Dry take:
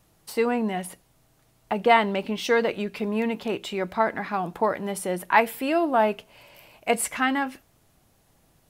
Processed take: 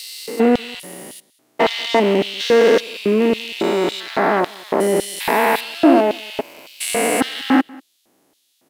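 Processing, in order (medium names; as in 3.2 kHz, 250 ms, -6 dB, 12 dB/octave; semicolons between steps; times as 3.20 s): spectrogram pixelated in time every 400 ms; waveshaping leveller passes 2; LFO high-pass square 1.8 Hz 300–3600 Hz; delay 190 ms -24 dB; trim +7.5 dB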